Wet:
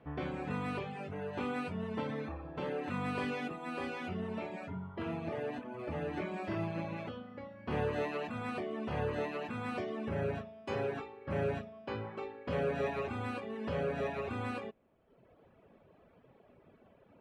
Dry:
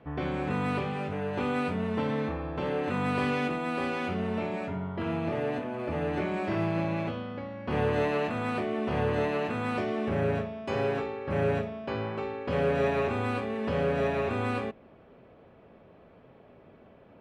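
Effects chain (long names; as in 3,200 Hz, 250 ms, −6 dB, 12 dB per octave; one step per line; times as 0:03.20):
reverb reduction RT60 1.1 s
level −5 dB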